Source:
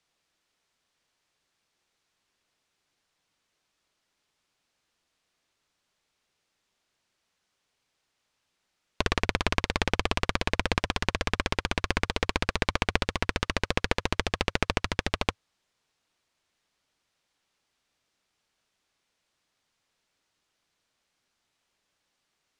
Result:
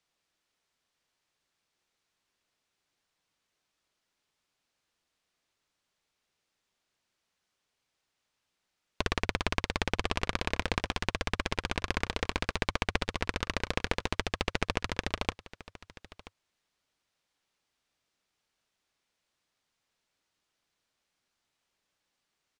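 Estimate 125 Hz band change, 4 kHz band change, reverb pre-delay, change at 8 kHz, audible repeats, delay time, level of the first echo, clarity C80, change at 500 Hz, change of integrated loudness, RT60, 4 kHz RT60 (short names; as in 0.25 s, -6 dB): -4.0 dB, -4.0 dB, none, -4.0 dB, 1, 0.981 s, -18.5 dB, none, -4.0 dB, -4.0 dB, none, none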